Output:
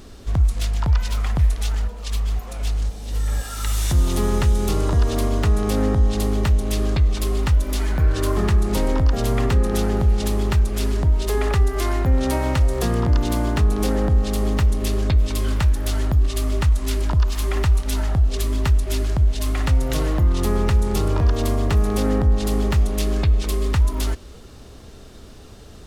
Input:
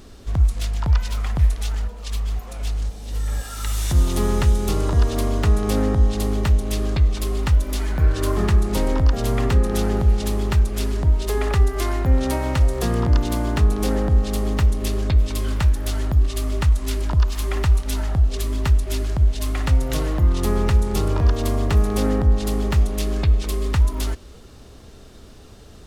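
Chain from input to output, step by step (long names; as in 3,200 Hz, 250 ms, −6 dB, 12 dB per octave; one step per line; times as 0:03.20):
in parallel at +2.5 dB: brickwall limiter −14.5 dBFS, peak gain reduction 8 dB
on the sum: level −5.5 dB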